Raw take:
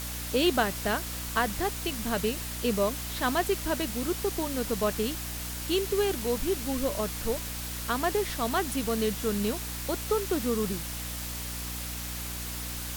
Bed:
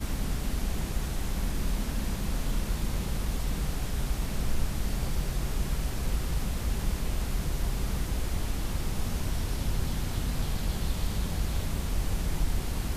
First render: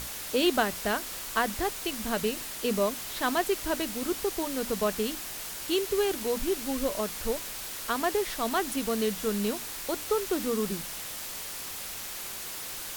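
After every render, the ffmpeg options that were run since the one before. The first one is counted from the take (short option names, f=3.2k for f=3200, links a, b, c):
-af "bandreject=f=60:t=h:w=6,bandreject=f=120:t=h:w=6,bandreject=f=180:t=h:w=6,bandreject=f=240:t=h:w=6,bandreject=f=300:t=h:w=6"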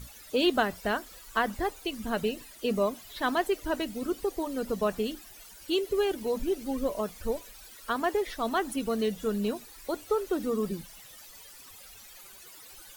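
-af "afftdn=nr=16:nf=-38"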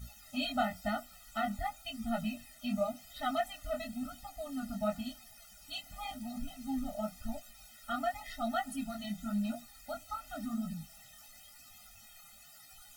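-af "flanger=delay=17:depth=7.9:speed=0.94,afftfilt=real='re*eq(mod(floor(b*sr/1024/300),2),0)':imag='im*eq(mod(floor(b*sr/1024/300),2),0)':win_size=1024:overlap=0.75"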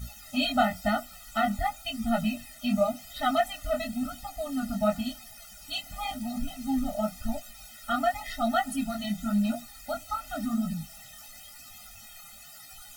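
-af "volume=8dB"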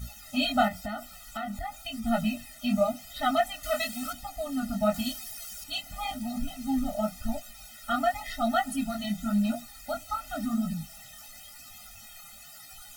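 -filter_complex "[0:a]asettb=1/sr,asplit=3[a][b][c];[a]atrim=end=0.684[d];[b]atrim=start=0.68:end=2.05,asetpts=PTS-STARTPTS,afade=t=in:d=0.004:c=qsin,afade=t=out:st=1.366:d=0.004:c=qsin,acompressor=threshold=-32dB:ratio=4:attack=3.2:release=140:knee=1:detection=peak[e];[c]atrim=start=2.046[f];[d][e]acrossfade=d=0.004:c1=hsin:c2=qsin[g];[g][f]acrossfade=d=0.004:c1=qsin:c2=hsin,asettb=1/sr,asplit=3[h][i][j];[h]atrim=end=3.634[k];[i]atrim=start=3.63:end=4.13,asetpts=PTS-STARTPTS,afade=t=in:d=0.004:c=qsin,afade=t=out:st=0.496:d=0.004:c=qsin,tiltshelf=f=680:g=-8[l];[j]atrim=start=4.126[m];[k][l]acrossfade=d=0.004:c1=hsin:c2=qsin[n];[n][m]acrossfade=d=0.004:c1=qsin:c2=hsin,asettb=1/sr,asplit=3[o][p][q];[o]atrim=end=4.944[r];[p]atrim=start=4.94:end=5.64,asetpts=PTS-STARTPTS,afade=t=in:d=0.004:c=qsin,afade=t=out:st=0.696:d=0.004:c=qsin,highshelf=f=3.1k:g=8.5[s];[q]atrim=start=5.636[t];[r][s]acrossfade=d=0.004:c1=hsin:c2=qsin[u];[u][t]acrossfade=d=0.004:c1=qsin:c2=hsin"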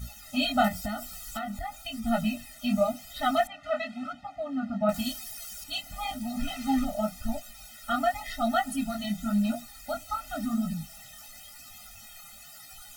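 -filter_complex "[0:a]asettb=1/sr,asplit=3[a][b][c];[a]atrim=end=0.644[d];[b]atrim=start=0.64:end=1.39,asetpts=PTS-STARTPTS,afade=t=in:d=0.004:c=qsin,afade=t=out:st=0.746:d=0.004:c=qsin,bass=f=250:g=5,treble=f=4k:g=7[e];[c]atrim=start=1.386[f];[d][e]acrossfade=d=0.004:c1=hsin:c2=qsin[g];[g][f]acrossfade=d=0.004:c1=qsin:c2=hsin,asettb=1/sr,asplit=3[h][i][j];[h]atrim=end=3.474[k];[i]atrim=start=3.47:end=4.89,asetpts=PTS-STARTPTS,afade=t=in:d=0.004:c=qsin,afade=t=out:st=1.416:d=0.004:c=qsin,highpass=120,lowpass=2.2k[l];[j]atrim=start=4.886[m];[k][l]acrossfade=d=0.004:c1=hsin:c2=qsin[n];[n][m]acrossfade=d=0.004:c1=qsin:c2=hsin,asplit=3[o][p][q];[o]afade=t=out:st=6.38:d=0.02[r];[p]equalizer=f=1.7k:w=0.42:g=11,afade=t=in:st=6.38:d=0.02,afade=t=out:st=6.84:d=0.02[s];[q]afade=t=in:st=6.84:d=0.02[t];[r][s][t]amix=inputs=3:normalize=0"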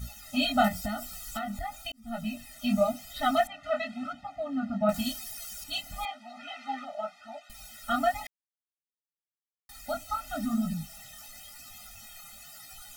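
-filter_complex "[0:a]asettb=1/sr,asplit=3[a][b][c];[a]atrim=end=6.054[d];[b]atrim=start=6.05:end=7.5,asetpts=PTS-STARTPTS,afade=t=in:d=0.004:c=qsin,afade=t=out:st=1.446:d=0.004:c=qsin,highpass=730,lowpass=2.8k[e];[c]atrim=start=7.496[f];[d][e]acrossfade=d=0.004:c1=hsin:c2=qsin[g];[g][f]acrossfade=d=0.004:c1=qsin:c2=hsin,asplit=4[h][i][j][k];[h]atrim=end=1.92,asetpts=PTS-STARTPTS,afade=t=out:st=1.916:d=0.004:c=hsin[l];[i]atrim=start=1.92:end=8.27,asetpts=PTS-STARTPTS,afade=t=in:d=0.67,afade=t=out:st=6.346:d=0.004:c=hsin[m];[j]atrim=start=8.27:end=9.69,asetpts=PTS-STARTPTS,volume=0[n];[k]atrim=start=9.69,asetpts=PTS-STARTPTS,afade=t=in:d=0.004:c=hsin[o];[l][m][n][o]concat=n=4:v=0:a=1"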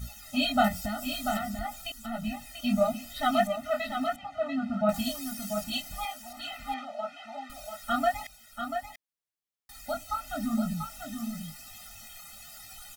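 -af "aecho=1:1:689:0.447"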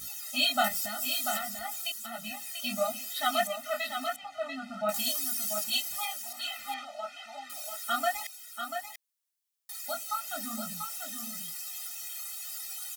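-af "highpass=f=900:p=1,highshelf=f=4.1k:g=10"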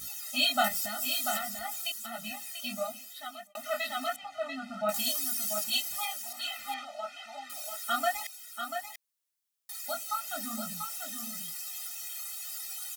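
-filter_complex "[0:a]asplit=2[a][b];[a]atrim=end=3.55,asetpts=PTS-STARTPTS,afade=t=out:st=2.3:d=1.25[c];[b]atrim=start=3.55,asetpts=PTS-STARTPTS,afade=t=in:d=0.004:c=hsin[d];[c][d]concat=n=2:v=0:a=1"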